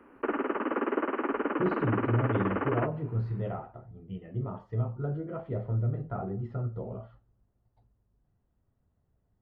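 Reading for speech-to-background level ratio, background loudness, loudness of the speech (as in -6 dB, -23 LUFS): -2.0 dB, -31.5 LUFS, -33.5 LUFS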